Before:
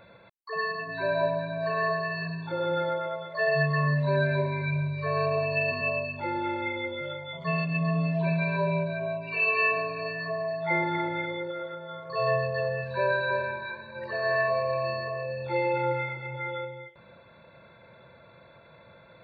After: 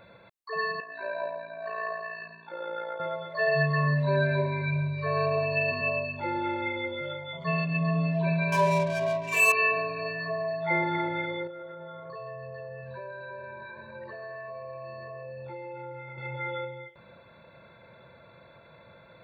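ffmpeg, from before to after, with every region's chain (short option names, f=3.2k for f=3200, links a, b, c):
-filter_complex "[0:a]asettb=1/sr,asplit=3[a][b][c];[a]atrim=end=0.804[d];[b]atrim=start=0.8:end=3,asetpts=PTS-STARTPTS,afade=t=in:d=0.004:c=qsin,afade=t=out:st=2.196:d=0.004:c=qsin,equalizer=f=870:w=0.54:g=-3,tremolo=f=57:d=0.571,highpass=520,lowpass=2.6k[e];[c]atrim=start=2.996[f];[d][e]acrossfade=d=0.004:c1=hsin:c2=qsin[g];[g][f]acrossfade=d=0.004:c1=qsin:c2=hsin,asettb=1/sr,asplit=3[h][i][j];[h]atrim=end=8.524[k];[i]atrim=start=8.52:end=9.52,asetpts=PTS-STARTPTS,afade=t=in:d=0.004:c=qsin,afade=t=out:st=0.996:d=0.004:c=qsin,equalizer=f=1.3k:t=o:w=1.6:g=10.5,adynamicsmooth=sensitivity=5.5:basefreq=830,asuperstop=centerf=1400:order=4:qfactor=3.1[l];[j]atrim=start=9.516[m];[k][l]acrossfade=d=0.004:c1=hsin:c2=qsin[n];[n][m]acrossfade=d=0.004:c1=qsin:c2=hsin,asettb=1/sr,asplit=3[o][p][q];[o]atrim=end=11.474[r];[p]atrim=start=11.47:end=16.18,asetpts=PTS-STARTPTS,afade=t=in:d=0.004:c=qsin,afade=t=out:st=4.706:d=0.004:c=qsin,acompressor=threshold=-37dB:ratio=6:attack=3.2:release=140:knee=1:detection=peak,lowpass=f=1.8k:p=1[s];[q]atrim=start=16.176[t];[r][s]acrossfade=d=0.004:c1=hsin:c2=qsin[u];[u][t]acrossfade=d=0.004:c1=qsin:c2=hsin"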